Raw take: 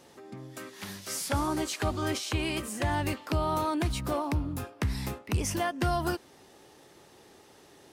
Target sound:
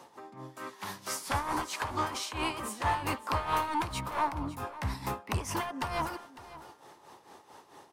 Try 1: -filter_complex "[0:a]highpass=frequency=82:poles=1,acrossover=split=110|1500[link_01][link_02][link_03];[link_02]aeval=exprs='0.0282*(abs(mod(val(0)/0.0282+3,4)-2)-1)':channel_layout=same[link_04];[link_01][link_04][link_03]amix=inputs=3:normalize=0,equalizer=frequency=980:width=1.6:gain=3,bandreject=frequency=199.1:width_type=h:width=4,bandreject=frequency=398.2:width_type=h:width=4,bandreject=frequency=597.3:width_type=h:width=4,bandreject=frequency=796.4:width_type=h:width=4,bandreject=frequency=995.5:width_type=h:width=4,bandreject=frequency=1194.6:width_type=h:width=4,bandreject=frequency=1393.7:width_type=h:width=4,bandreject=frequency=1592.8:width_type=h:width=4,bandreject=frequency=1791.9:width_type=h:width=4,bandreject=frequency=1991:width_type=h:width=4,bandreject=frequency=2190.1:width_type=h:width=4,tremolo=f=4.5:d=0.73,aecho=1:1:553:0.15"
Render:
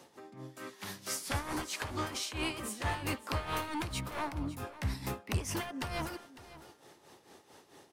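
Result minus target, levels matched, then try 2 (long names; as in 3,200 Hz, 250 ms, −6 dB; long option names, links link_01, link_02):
1,000 Hz band −5.0 dB
-filter_complex "[0:a]highpass=frequency=82:poles=1,acrossover=split=110|1500[link_01][link_02][link_03];[link_02]aeval=exprs='0.0282*(abs(mod(val(0)/0.0282+3,4)-2)-1)':channel_layout=same[link_04];[link_01][link_04][link_03]amix=inputs=3:normalize=0,equalizer=frequency=980:width=1.6:gain=13.5,bandreject=frequency=199.1:width_type=h:width=4,bandreject=frequency=398.2:width_type=h:width=4,bandreject=frequency=597.3:width_type=h:width=4,bandreject=frequency=796.4:width_type=h:width=4,bandreject=frequency=995.5:width_type=h:width=4,bandreject=frequency=1194.6:width_type=h:width=4,bandreject=frequency=1393.7:width_type=h:width=4,bandreject=frequency=1592.8:width_type=h:width=4,bandreject=frequency=1791.9:width_type=h:width=4,bandreject=frequency=1991:width_type=h:width=4,bandreject=frequency=2190.1:width_type=h:width=4,tremolo=f=4.5:d=0.73,aecho=1:1:553:0.15"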